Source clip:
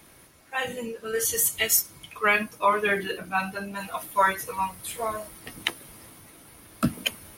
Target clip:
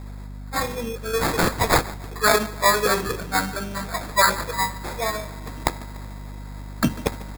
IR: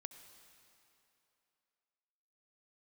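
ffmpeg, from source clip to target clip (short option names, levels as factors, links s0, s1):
-filter_complex "[0:a]aecho=1:1:146|292|438|584:0.112|0.0572|0.0292|0.0149,acrusher=samples=15:mix=1:aa=0.000001,aeval=exprs='val(0)+0.0126*(sin(2*PI*50*n/s)+sin(2*PI*2*50*n/s)/2+sin(2*PI*3*50*n/s)/3+sin(2*PI*4*50*n/s)/4+sin(2*PI*5*50*n/s)/5)':c=same,asplit=2[s0][s1];[1:a]atrim=start_sample=2205,atrim=end_sample=4410,highshelf=f=7100:g=7.5[s2];[s1][s2]afir=irnorm=-1:irlink=0,volume=0.944[s3];[s0][s3]amix=inputs=2:normalize=0"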